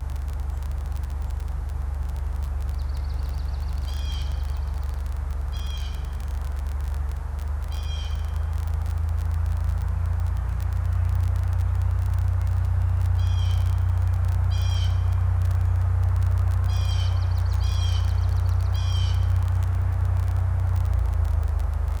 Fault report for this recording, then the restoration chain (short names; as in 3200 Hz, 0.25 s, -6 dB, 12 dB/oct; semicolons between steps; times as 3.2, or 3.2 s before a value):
crackle 27/s -26 dBFS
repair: de-click